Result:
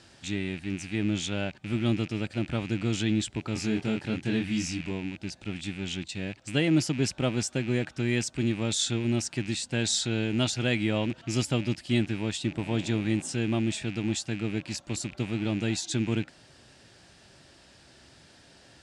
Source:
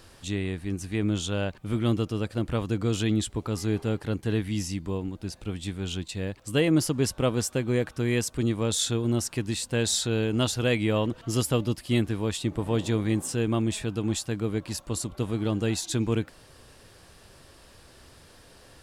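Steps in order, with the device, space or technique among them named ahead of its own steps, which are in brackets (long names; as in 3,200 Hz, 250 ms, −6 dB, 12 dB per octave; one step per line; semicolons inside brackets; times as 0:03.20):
car door speaker with a rattle (loose part that buzzes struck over −40 dBFS, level −30 dBFS; loudspeaker in its box 83–8,100 Hz, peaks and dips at 89 Hz −6 dB, 470 Hz −9 dB, 1,100 Hz −9 dB)
0:03.53–0:04.91: double-tracking delay 23 ms −3.5 dB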